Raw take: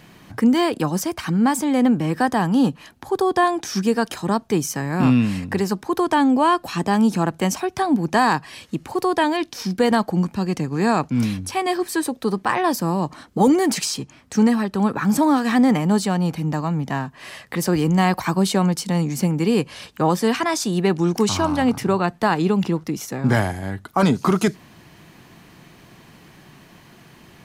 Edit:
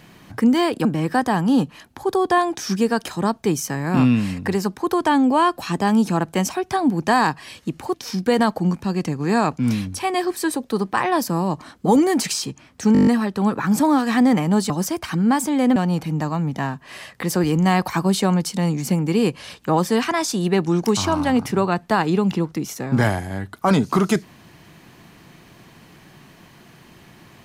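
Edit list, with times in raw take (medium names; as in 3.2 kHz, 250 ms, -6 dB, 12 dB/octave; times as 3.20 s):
0.85–1.91 s: move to 16.08 s
9.00–9.46 s: delete
14.45 s: stutter 0.02 s, 8 plays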